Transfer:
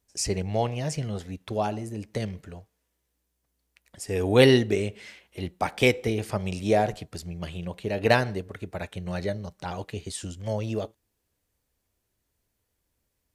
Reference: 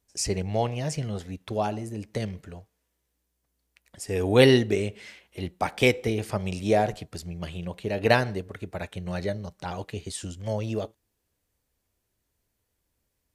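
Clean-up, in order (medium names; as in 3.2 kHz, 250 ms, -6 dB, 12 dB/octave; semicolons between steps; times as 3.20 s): clip repair -6.5 dBFS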